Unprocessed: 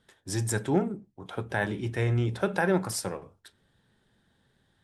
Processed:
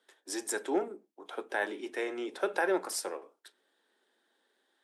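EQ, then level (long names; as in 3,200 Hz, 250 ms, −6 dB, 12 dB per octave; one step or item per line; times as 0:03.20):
Butterworth high-pass 300 Hz 36 dB per octave
−2.5 dB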